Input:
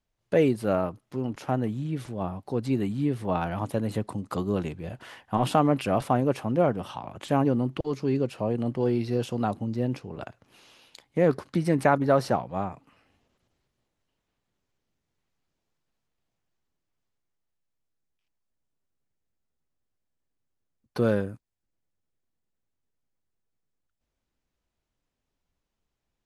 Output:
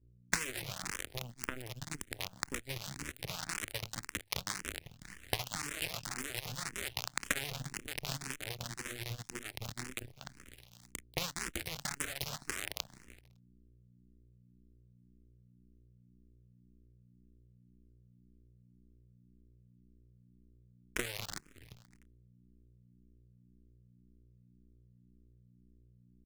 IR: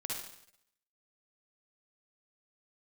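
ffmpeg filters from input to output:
-filter_complex "[0:a]asplit=6[link_01][link_02][link_03][link_04][link_05][link_06];[link_02]adelay=187,afreqshift=-130,volume=-5dB[link_07];[link_03]adelay=374,afreqshift=-260,volume=-12.7dB[link_08];[link_04]adelay=561,afreqshift=-390,volume=-20.5dB[link_09];[link_05]adelay=748,afreqshift=-520,volume=-28.2dB[link_10];[link_06]adelay=935,afreqshift=-650,volume=-36dB[link_11];[link_01][link_07][link_08][link_09][link_10][link_11]amix=inputs=6:normalize=0,alimiter=limit=-15.5dB:level=0:latency=1:release=72,acrusher=bits=5:dc=4:mix=0:aa=0.000001,asplit=2[link_12][link_13];[link_13]adelay=27,volume=-14dB[link_14];[link_12][link_14]amix=inputs=2:normalize=0,aeval=exprs='val(0)+0.00447*(sin(2*PI*60*n/s)+sin(2*PI*2*60*n/s)/2+sin(2*PI*3*60*n/s)/3+sin(2*PI*4*60*n/s)/4+sin(2*PI*5*60*n/s)/5)':channel_layout=same,equalizer=frequency=125:width_type=o:width=1:gain=10,equalizer=frequency=250:width_type=o:width=1:gain=-10,equalizer=frequency=500:width_type=o:width=1:gain=-8,equalizer=frequency=1000:width_type=o:width=1:gain=-10,equalizer=frequency=2000:width_type=o:width=1:gain=8,equalizer=frequency=8000:width_type=o:width=1:gain=4,acompressor=threshold=-37dB:ratio=6,lowshelf=frequency=91:gain=-6.5,bandreject=frequency=50:width_type=h:width=6,bandreject=frequency=100:width_type=h:width=6,bandreject=frequency=150:width_type=h:width=6,aeval=exprs='0.126*(cos(1*acos(clip(val(0)/0.126,-1,1)))-cos(1*PI/2))+0.00224*(cos(6*acos(clip(val(0)/0.126,-1,1)))-cos(6*PI/2))+0.0178*(cos(7*acos(clip(val(0)/0.126,-1,1)))-cos(7*PI/2))':channel_layout=same,asplit=2[link_15][link_16];[link_16]afreqshift=1.9[link_17];[link_15][link_17]amix=inputs=2:normalize=1,volume=15.5dB"

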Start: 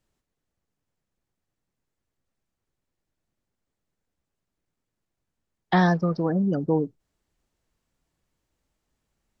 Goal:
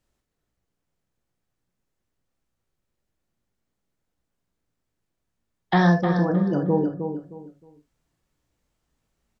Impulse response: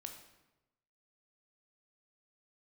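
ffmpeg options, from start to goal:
-filter_complex "[0:a]asplit=2[link_01][link_02];[link_02]adelay=311,lowpass=frequency=3400:poles=1,volume=-7.5dB,asplit=2[link_03][link_04];[link_04]adelay=311,lowpass=frequency=3400:poles=1,volume=0.26,asplit=2[link_05][link_06];[link_06]adelay=311,lowpass=frequency=3400:poles=1,volume=0.26[link_07];[link_01][link_03][link_05][link_07]amix=inputs=4:normalize=0[link_08];[1:a]atrim=start_sample=2205,atrim=end_sample=3528[link_09];[link_08][link_09]afir=irnorm=-1:irlink=0,volume=6dB"

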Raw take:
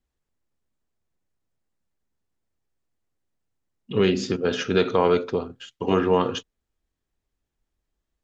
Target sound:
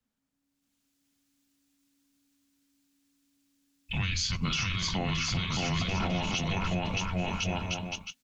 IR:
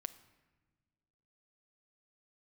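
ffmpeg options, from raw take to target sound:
-filter_complex "[0:a]aecho=1:1:620|1054|1358|1570|1719:0.631|0.398|0.251|0.158|0.1,acrossover=split=250|2600[link_01][link_02][link_03];[link_03]dynaudnorm=framelen=120:gausssize=11:maxgain=14dB[link_04];[link_01][link_02][link_04]amix=inputs=3:normalize=0,lowshelf=frequency=230:gain=-5.5,acompressor=threshold=-22dB:ratio=4,alimiter=limit=-21dB:level=0:latency=1:release=15,afreqshift=-280"

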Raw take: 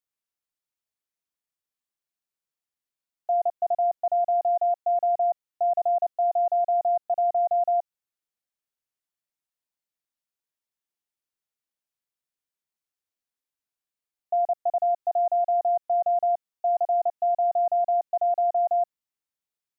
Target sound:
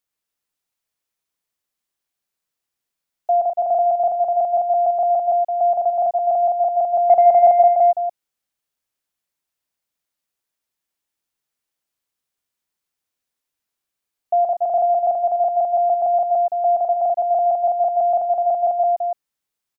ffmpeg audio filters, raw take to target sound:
ffmpeg -i in.wav -filter_complex "[0:a]asplit=3[link_01][link_02][link_03];[link_01]afade=type=out:start_time=6.97:duration=0.02[link_04];[link_02]acontrast=86,afade=type=in:start_time=6.97:duration=0.02,afade=type=out:start_time=7.61:duration=0.02[link_05];[link_03]afade=type=in:start_time=7.61:duration=0.02[link_06];[link_04][link_05][link_06]amix=inputs=3:normalize=0,asplit=2[link_07][link_08];[link_08]aecho=0:1:116.6|291.5:0.355|0.501[link_09];[link_07][link_09]amix=inputs=2:normalize=0,volume=6.5dB" out.wav

